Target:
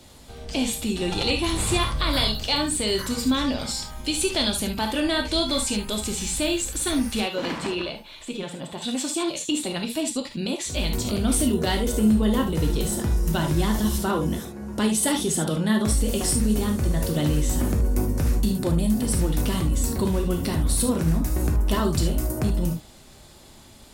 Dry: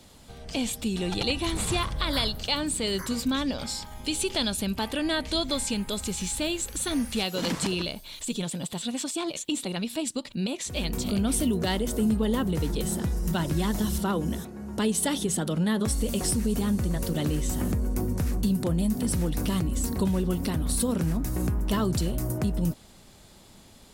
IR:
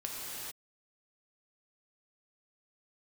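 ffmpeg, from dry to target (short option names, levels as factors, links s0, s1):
-filter_complex "[0:a]asettb=1/sr,asplit=3[s0][s1][s2];[s0]atrim=end=7.204[s3];[s1]atrim=start=7.2:end=8.82,asetpts=PTS-STARTPTS,afade=t=in:d=0.004:c=qsin,afade=t=out:st=1.616:d=0.004:c=qsin,bass=f=250:g=-7,treble=f=4000:g=-14[s4];[s2]atrim=start=8.816[s5];[s3][s4]acrossfade=d=0.004:c1=hsin:c2=qsin[s6];[s6][s5]acrossfade=d=0.004:c1=qsin:c2=hsin[s7];[1:a]atrim=start_sample=2205,atrim=end_sample=3528[s8];[s7][s8]afir=irnorm=-1:irlink=0,volume=1.88"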